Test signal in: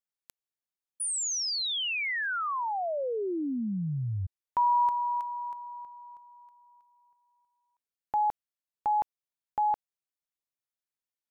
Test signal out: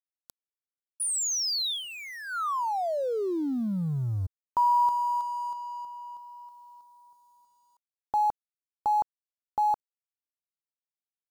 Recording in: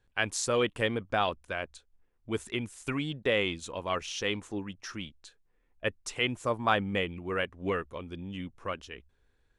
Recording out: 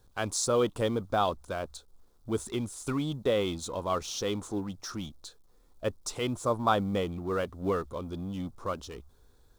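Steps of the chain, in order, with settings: G.711 law mismatch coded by mu; band shelf 2200 Hz -12 dB 1.1 oct; gain +1 dB

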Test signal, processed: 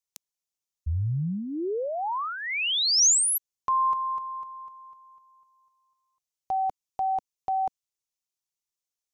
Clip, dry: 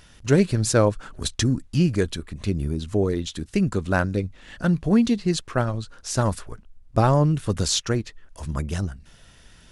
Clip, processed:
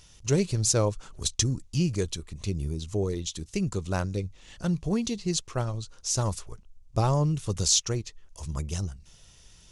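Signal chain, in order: fifteen-band EQ 250 Hz -8 dB, 630 Hz -4 dB, 1600 Hz -10 dB, 6300 Hz +8 dB; gain -3.5 dB

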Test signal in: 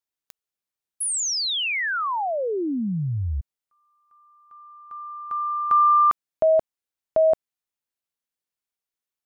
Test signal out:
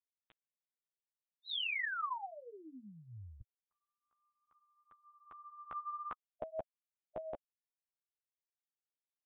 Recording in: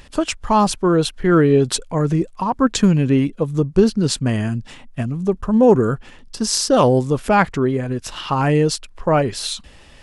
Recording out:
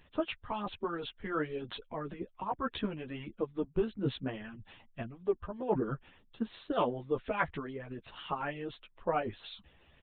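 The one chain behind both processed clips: chorus voices 2, 0.6 Hz, delay 12 ms, depth 3.4 ms; harmonic-percussive split harmonic -15 dB; downsampling 8000 Hz; gain -9 dB

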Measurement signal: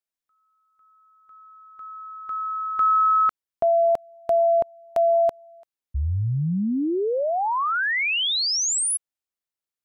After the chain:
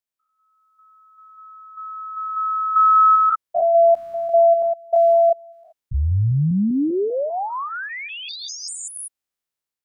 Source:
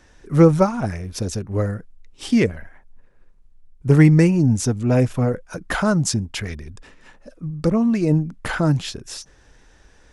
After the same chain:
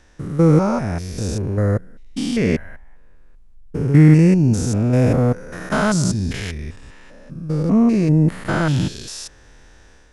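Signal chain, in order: stepped spectrum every 0.2 s; AGC gain up to 5 dB; gain +1 dB

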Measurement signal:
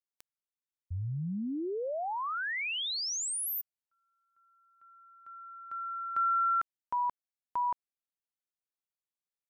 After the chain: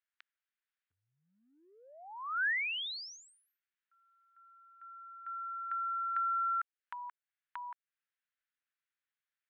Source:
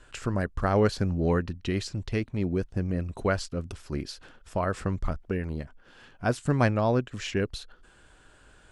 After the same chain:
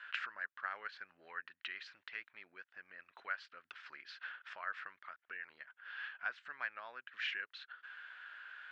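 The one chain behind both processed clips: LPF 3600 Hz 24 dB/oct; compressor 3:1, threshold -43 dBFS; resonant high-pass 1600 Hz, resonance Q 2.9; gain +2 dB

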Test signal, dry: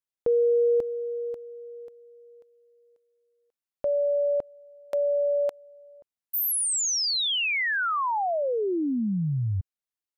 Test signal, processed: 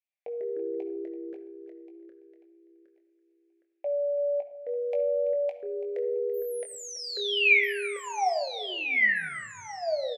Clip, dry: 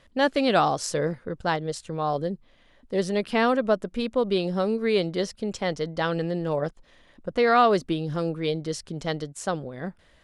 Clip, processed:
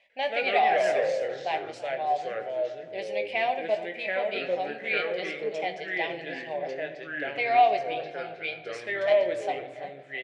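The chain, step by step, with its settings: double band-pass 1300 Hz, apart 1.7 oct; tilt shelf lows -5 dB; doubler 19 ms -8 dB; shoebox room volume 2600 m³, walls furnished, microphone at 1.2 m; echoes that change speed 97 ms, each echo -3 st, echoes 2; on a send: feedback echo 0.334 s, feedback 32%, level -16.5 dB; on the sum: gain +4 dB

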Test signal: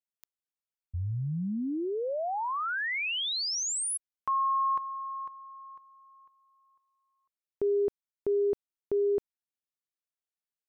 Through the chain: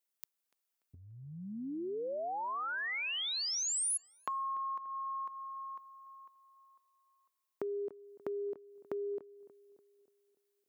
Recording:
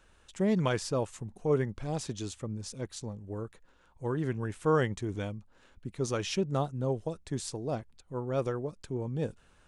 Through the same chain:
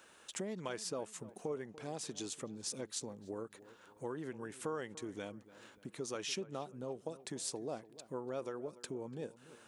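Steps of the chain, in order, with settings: compressor 6:1, threshold -41 dBFS; HPF 250 Hz 12 dB/oct; high shelf 8400 Hz +7.5 dB; on a send: darkening echo 0.291 s, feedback 48%, low-pass 2000 Hz, level -17 dB; on the sum: gain +4 dB

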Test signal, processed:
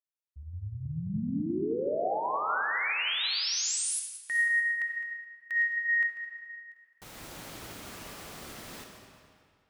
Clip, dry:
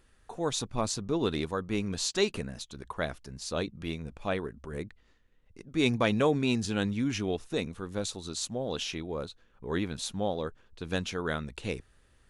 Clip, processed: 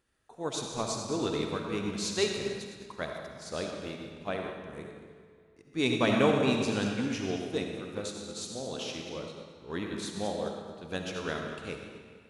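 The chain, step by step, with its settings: regenerating reverse delay 0.107 s, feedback 56%, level -9 dB; HPF 110 Hz 6 dB/oct; digital reverb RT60 2.2 s, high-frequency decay 0.8×, pre-delay 25 ms, DRR 1 dB; upward expander 1.5:1, over -41 dBFS

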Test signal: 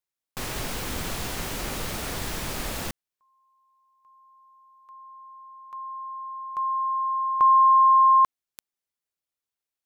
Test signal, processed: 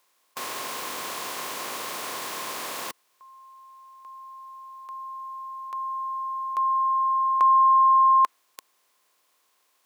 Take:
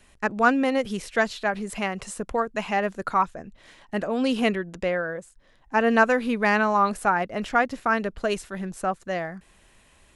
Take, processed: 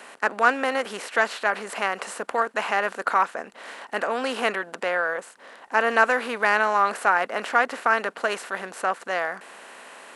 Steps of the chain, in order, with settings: per-bin compression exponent 0.6; HPF 410 Hz 12 dB/oct; dynamic EQ 1500 Hz, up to +3 dB, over -28 dBFS, Q 0.94; gain -3 dB

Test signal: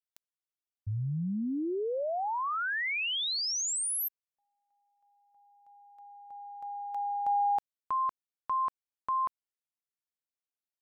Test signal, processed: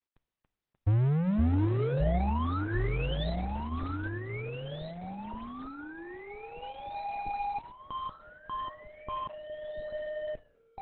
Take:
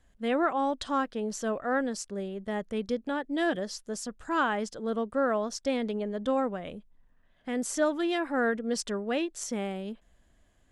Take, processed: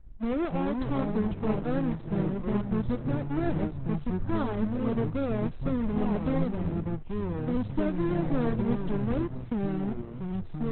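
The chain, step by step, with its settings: half-waves squared off; high shelf 3700 Hz -8 dB; compressor 2:1, threshold -31 dBFS; flange 1.6 Hz, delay 8.6 ms, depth 1.4 ms, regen -89%; RIAA curve playback; echoes that change speed 0.227 s, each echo -5 st, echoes 3; Opus 8 kbps 48000 Hz

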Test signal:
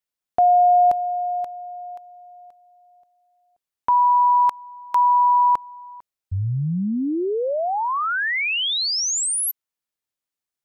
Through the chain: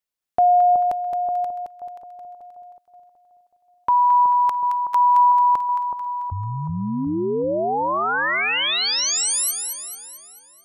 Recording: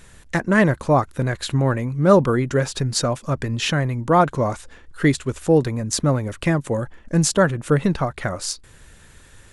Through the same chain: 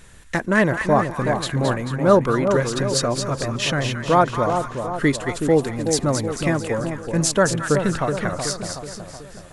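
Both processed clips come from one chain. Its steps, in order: dynamic EQ 120 Hz, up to -5 dB, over -30 dBFS, Q 0.78; split-band echo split 1100 Hz, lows 0.373 s, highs 0.22 s, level -6 dB

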